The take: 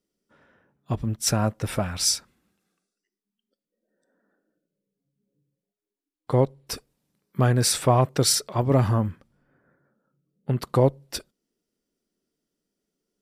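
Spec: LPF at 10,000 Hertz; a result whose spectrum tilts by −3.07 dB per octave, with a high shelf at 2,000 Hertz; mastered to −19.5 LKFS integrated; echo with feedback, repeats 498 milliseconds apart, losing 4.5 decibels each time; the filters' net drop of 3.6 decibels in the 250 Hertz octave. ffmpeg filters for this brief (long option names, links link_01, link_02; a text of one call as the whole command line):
ffmpeg -i in.wav -af "lowpass=10000,equalizer=frequency=250:width_type=o:gain=-5,highshelf=frequency=2000:gain=7.5,aecho=1:1:498|996|1494|1992|2490|2988|3486|3984|4482:0.596|0.357|0.214|0.129|0.0772|0.0463|0.0278|0.0167|0.01,volume=2dB" out.wav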